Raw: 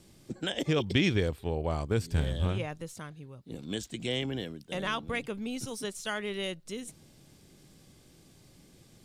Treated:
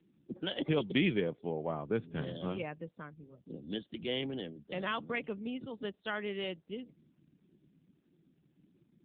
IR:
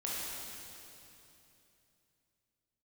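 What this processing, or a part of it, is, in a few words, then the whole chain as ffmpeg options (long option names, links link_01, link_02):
mobile call with aggressive noise cancelling: -filter_complex "[0:a]asettb=1/sr,asplit=3[link_01][link_02][link_03];[link_01]atrim=end=4.564[link_04];[link_02]atrim=start=4.56:end=5.65,asetpts=PTS-STARTPTS,afade=type=in:duration=0.004:curve=qsin,afade=type=out:start_time=1.086:duration=0.004:curve=qsin,highpass=frequency=46:width=0.5412,highpass=frequency=46:width=1.3066[link_05];[link_03]atrim=start=5.646[link_06];[link_04][link_05]acrossfade=duration=0.004:curve1=hsin:curve2=qsin[link_07];[link_07][link_06]acrossfade=duration=0.004:curve1=qsin:curve2=hsin,highpass=frequency=150:width=0.5412,highpass=frequency=150:width=1.3066,afftdn=noise_reduction=28:noise_floor=-50,volume=-2dB" -ar 8000 -c:a libopencore_amrnb -b:a 7950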